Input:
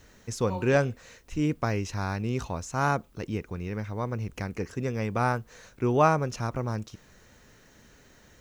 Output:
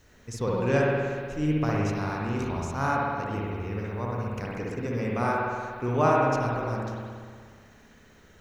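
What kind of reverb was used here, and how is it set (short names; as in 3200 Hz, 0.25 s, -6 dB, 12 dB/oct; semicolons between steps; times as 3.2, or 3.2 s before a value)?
spring tank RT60 1.9 s, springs 59 ms, chirp 45 ms, DRR -4 dB; gain -4 dB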